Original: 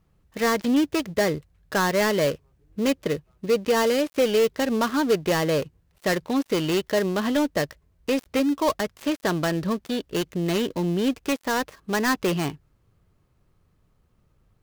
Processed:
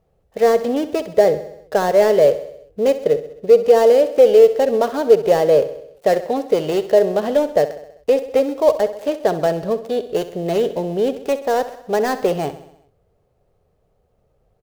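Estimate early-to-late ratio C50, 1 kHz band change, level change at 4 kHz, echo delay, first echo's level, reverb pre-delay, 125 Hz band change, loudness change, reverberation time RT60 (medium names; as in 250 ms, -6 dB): no reverb, +5.5 dB, -2.5 dB, 65 ms, -14.0 dB, no reverb, -1.5 dB, +7.5 dB, no reverb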